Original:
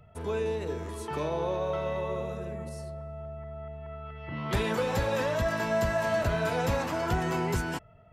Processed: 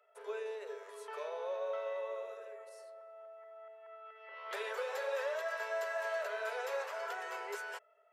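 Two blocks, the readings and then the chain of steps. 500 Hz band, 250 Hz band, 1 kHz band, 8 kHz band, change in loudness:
−8.5 dB, below −30 dB, −9.5 dB, −11.0 dB, −9.0 dB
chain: Chebyshev high-pass with heavy ripple 400 Hz, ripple 6 dB
level −5.5 dB

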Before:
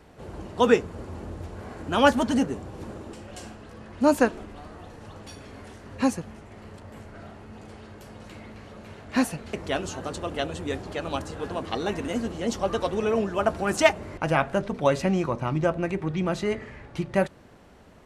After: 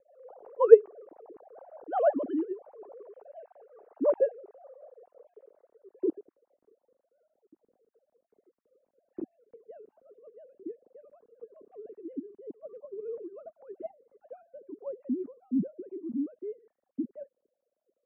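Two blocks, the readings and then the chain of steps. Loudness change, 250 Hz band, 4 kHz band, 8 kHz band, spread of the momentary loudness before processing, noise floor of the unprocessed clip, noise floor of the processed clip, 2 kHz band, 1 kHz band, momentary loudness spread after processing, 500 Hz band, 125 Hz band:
−2.5 dB, −9.0 dB, below −35 dB, below −40 dB, 23 LU, −51 dBFS, below −85 dBFS, below −20 dB, −12.0 dB, 20 LU, −2.0 dB, below −20 dB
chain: three sine waves on the formant tracks
low-pass filter sweep 750 Hz → 240 Hz, 0:04.06–0:07.04
rotating-speaker cabinet horn 5.5 Hz
level −4 dB

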